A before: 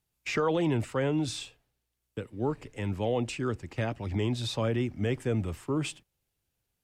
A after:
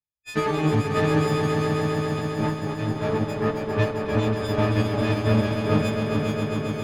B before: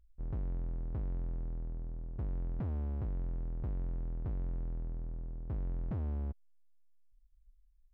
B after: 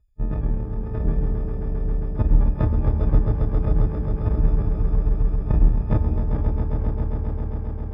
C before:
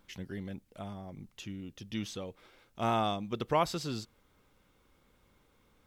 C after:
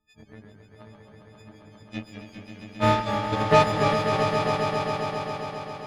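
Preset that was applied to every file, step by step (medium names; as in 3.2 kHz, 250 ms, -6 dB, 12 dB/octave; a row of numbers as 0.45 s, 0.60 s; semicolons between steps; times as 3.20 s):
partials quantised in pitch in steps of 6 st; RIAA curve playback; reverb removal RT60 0.88 s; bass shelf 100 Hz -11.5 dB; in parallel at -11 dB: saturation -29 dBFS; on the sum: Chebyshev shaper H 7 -18 dB, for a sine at -12 dBFS; ever faster or slower copies 83 ms, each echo -1 st, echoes 3, each echo -6 dB; on a send: echo with a slow build-up 134 ms, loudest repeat 5, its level -7 dB; on the sum: upward expansion 1.5:1, over -37 dBFS; normalise loudness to -24 LUFS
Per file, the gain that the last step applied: +1.5 dB, +19.0 dB, +7.0 dB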